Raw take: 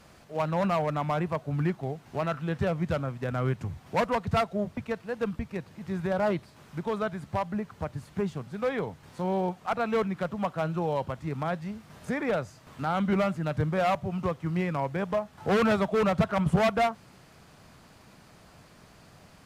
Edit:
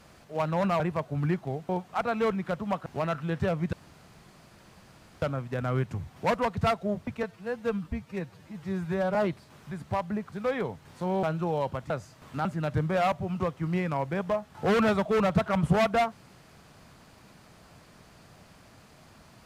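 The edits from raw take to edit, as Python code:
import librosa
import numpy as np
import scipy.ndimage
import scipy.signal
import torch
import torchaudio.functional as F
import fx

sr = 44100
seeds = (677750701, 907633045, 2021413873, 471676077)

y = fx.edit(x, sr, fx.cut(start_s=0.8, length_s=0.36),
    fx.insert_room_tone(at_s=2.92, length_s=1.49),
    fx.stretch_span(start_s=4.93, length_s=1.28, factor=1.5),
    fx.cut(start_s=6.77, length_s=0.36),
    fx.cut(start_s=7.74, length_s=0.76),
    fx.move(start_s=9.41, length_s=1.17, to_s=2.05),
    fx.cut(start_s=11.25, length_s=1.1),
    fx.cut(start_s=12.9, length_s=0.38), tone=tone)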